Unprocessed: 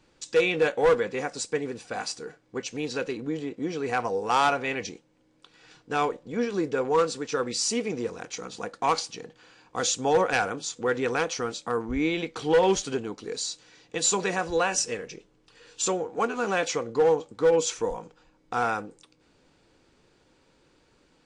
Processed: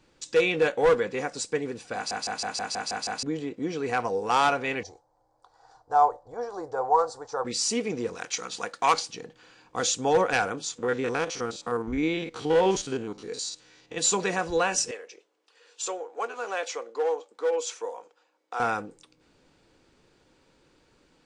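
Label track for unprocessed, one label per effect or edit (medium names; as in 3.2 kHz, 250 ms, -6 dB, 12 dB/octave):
1.950000	1.950000	stutter in place 0.16 s, 8 plays
4.830000	7.450000	FFT filter 100 Hz 0 dB, 200 Hz -24 dB, 520 Hz -2 dB, 780 Hz +12 dB, 1.8 kHz -12 dB, 2.6 kHz -27 dB, 4.5 kHz -8 dB
8.150000	8.940000	tilt shelf lows -6.5 dB, about 640 Hz
10.780000	13.980000	spectrogram pixelated in time every 50 ms
14.910000	18.600000	ladder high-pass 370 Hz, resonance 20%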